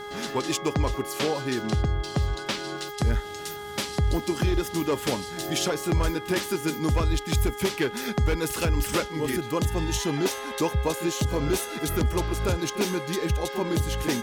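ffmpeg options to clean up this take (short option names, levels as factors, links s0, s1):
-af "bandreject=f=412.8:t=h:w=4,bandreject=f=825.6:t=h:w=4,bandreject=f=1238.4:t=h:w=4,bandreject=f=1651.2:t=h:w=4,bandreject=f=2064:t=h:w=4,bandreject=f=3300:w=30,agate=range=0.0891:threshold=0.0398"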